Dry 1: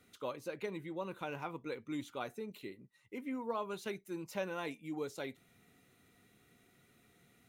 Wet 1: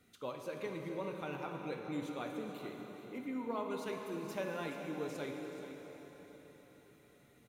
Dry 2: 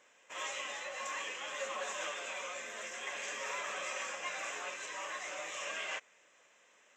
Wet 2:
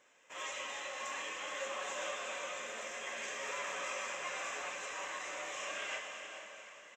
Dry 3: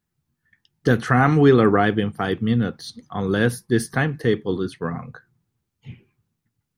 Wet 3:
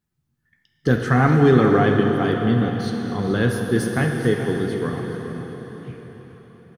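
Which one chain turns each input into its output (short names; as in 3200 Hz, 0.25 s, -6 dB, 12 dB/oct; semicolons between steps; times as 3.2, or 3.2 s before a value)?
low shelf 400 Hz +3 dB; on a send: echo 0.428 s -12.5 dB; on the sum: plate-style reverb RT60 4.9 s, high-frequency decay 0.9×, DRR 2 dB; gain -3 dB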